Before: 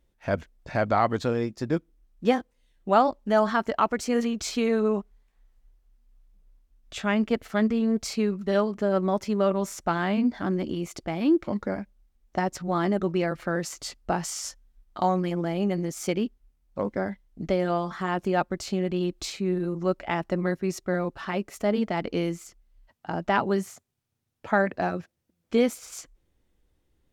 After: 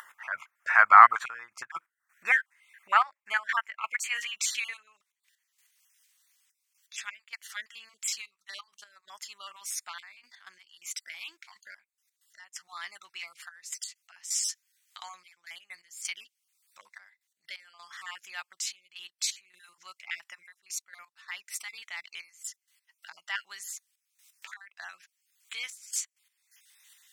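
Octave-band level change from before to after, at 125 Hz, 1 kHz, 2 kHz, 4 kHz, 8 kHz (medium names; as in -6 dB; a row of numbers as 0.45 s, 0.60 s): under -40 dB, +0.5 dB, +4.0 dB, 0.0 dB, +4.0 dB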